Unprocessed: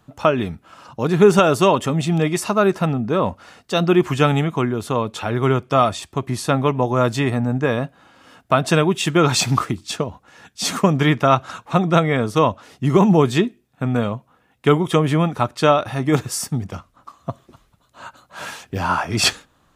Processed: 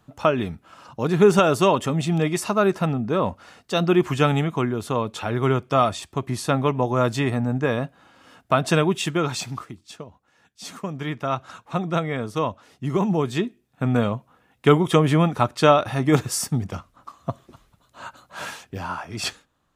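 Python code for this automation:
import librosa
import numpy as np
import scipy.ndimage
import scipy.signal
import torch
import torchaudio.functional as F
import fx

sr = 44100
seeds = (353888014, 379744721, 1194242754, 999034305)

y = fx.gain(x, sr, db=fx.line((8.96, -3.0), (9.6, -15.0), (10.84, -15.0), (11.52, -8.0), (13.27, -8.0), (13.89, -0.5), (18.41, -0.5), (18.95, -11.0)))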